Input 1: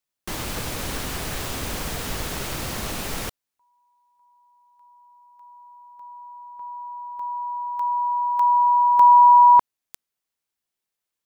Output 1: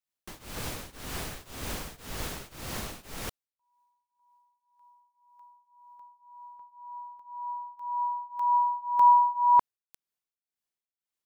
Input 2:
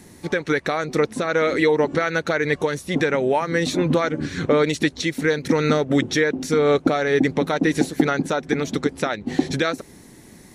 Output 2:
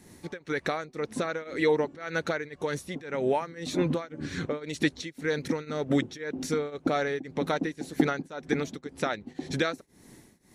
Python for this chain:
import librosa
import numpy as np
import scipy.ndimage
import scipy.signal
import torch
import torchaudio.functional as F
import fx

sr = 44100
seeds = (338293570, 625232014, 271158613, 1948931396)

y = fx.tremolo_shape(x, sr, shape='triangle', hz=1.9, depth_pct=95)
y = y * 10.0 ** (-4.5 / 20.0)